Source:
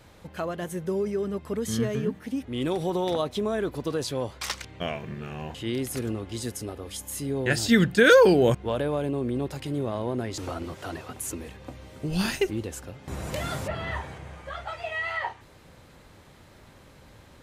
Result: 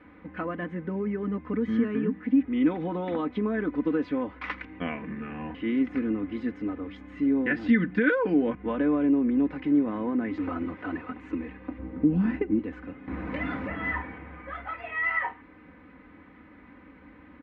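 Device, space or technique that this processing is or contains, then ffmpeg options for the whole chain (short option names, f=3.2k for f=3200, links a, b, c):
bass amplifier: -filter_complex "[0:a]asettb=1/sr,asplit=3[a][b][c];[a]atrim=end=11.784[d];[b]atrim=start=11.78:end=12.59,asetpts=PTS-STARTPTS,afade=t=in:d=0.004:c=qsin,afade=t=out:st=0.806:d=0.004:c=qsin,tiltshelf=f=1.1k:g=9[e];[c]atrim=start=12.586[f];[d][e]acrossfade=d=0.004:c1=hsin:c2=qsin[g];[g][f]acrossfade=d=0.004:c1=qsin:c2=hsin,acompressor=threshold=-23dB:ratio=5,highpass=73,equalizer=f=120:t=q:w=4:g=-8,equalizer=f=300:t=q:w=4:g=9,equalizer=f=510:t=q:w=4:g=-6,equalizer=f=730:t=q:w=4:g=-7,equalizer=f=2.1k:t=q:w=4:g=5,lowpass=f=2.2k:w=0.5412,lowpass=f=2.2k:w=1.3066,aecho=1:1:4:0.74"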